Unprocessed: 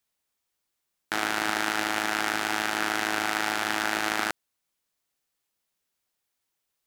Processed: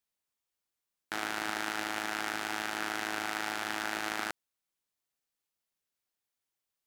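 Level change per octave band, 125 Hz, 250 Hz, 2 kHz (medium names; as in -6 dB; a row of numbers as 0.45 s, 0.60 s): -7.5 dB, -7.5 dB, -7.5 dB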